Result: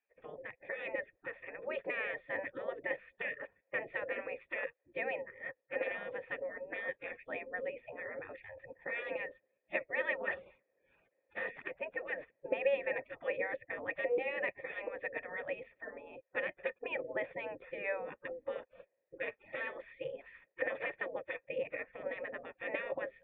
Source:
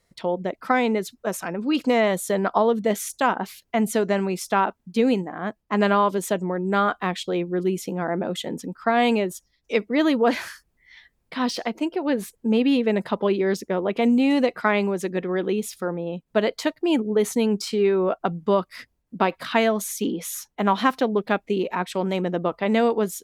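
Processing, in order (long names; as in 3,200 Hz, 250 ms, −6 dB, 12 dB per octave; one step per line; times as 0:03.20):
gate on every frequency bin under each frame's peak −20 dB weak
formant resonators in series e
high-shelf EQ 3,500 Hz −10 dB
level +14.5 dB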